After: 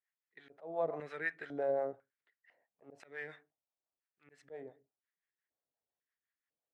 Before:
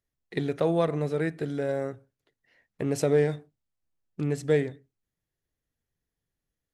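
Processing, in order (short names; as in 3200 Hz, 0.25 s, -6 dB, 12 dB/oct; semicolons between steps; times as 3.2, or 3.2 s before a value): harmonic tremolo 5.8 Hz, depth 70%, crossover 540 Hz; auto swell 0.412 s; LFO band-pass square 1 Hz 710–1800 Hz; gain +5 dB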